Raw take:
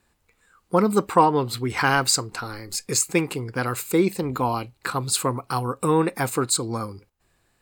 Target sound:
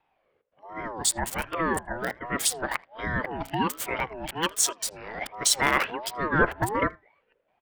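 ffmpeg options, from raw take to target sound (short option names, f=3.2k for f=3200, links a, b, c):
-filter_complex "[0:a]areverse,highshelf=f=8.4k:g=3.5,acrossover=split=140|1300|2600[a][b][c][d];[a]aeval=exprs='0.0178*(abs(mod(val(0)/0.0178+3,4)-2)-1)':c=same[e];[b]flanger=delay=9.2:depth=7.1:regen=78:speed=0.42:shape=sinusoidal[f];[c]dynaudnorm=f=710:g=5:m=5dB[g];[d]aeval=exprs='val(0)*gte(abs(val(0)),0.0422)':c=same[h];[e][f][g][h]amix=inputs=4:normalize=0,asplit=2[i][j];[j]adelay=80,highpass=300,lowpass=3.4k,asoftclip=type=hard:threshold=-14.5dB,volume=-24dB[k];[i][k]amix=inputs=2:normalize=0,aeval=exprs='val(0)*sin(2*PI*660*n/s+660*0.3/1.3*sin(2*PI*1.3*n/s))':c=same"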